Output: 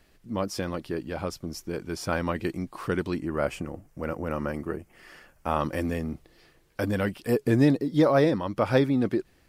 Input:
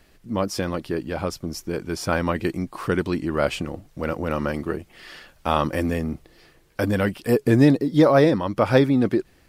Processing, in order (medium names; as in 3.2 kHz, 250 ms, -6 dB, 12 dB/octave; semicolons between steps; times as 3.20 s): 3.19–5.61 s: peaking EQ 3.8 kHz -12 dB 0.73 oct; trim -5 dB